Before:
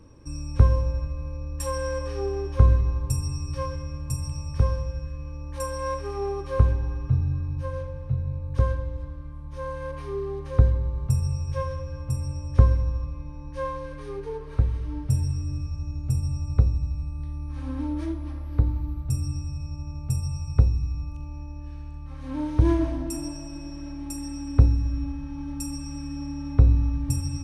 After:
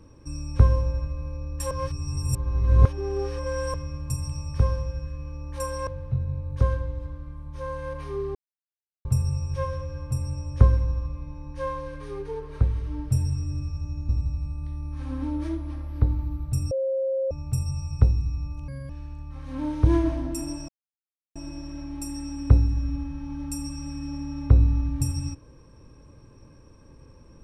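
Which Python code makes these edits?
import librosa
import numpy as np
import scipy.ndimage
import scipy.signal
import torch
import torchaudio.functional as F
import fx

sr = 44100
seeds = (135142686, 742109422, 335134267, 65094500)

y = fx.edit(x, sr, fx.reverse_span(start_s=1.71, length_s=2.03),
    fx.cut(start_s=5.87, length_s=1.98),
    fx.silence(start_s=10.33, length_s=0.7),
    fx.cut(start_s=16.07, length_s=0.59),
    fx.bleep(start_s=19.28, length_s=0.6, hz=534.0, db=-22.5),
    fx.speed_span(start_s=21.25, length_s=0.4, speed=1.86),
    fx.insert_silence(at_s=23.44, length_s=0.67), tone=tone)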